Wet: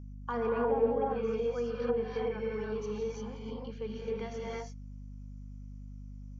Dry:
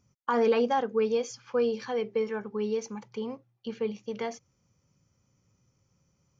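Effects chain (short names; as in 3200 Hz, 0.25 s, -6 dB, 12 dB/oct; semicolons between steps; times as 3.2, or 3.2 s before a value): non-linear reverb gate 0.37 s rising, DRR -4.5 dB; treble ducked by the level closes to 870 Hz, closed at -15.5 dBFS; hum 50 Hz, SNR 10 dB; gain -9 dB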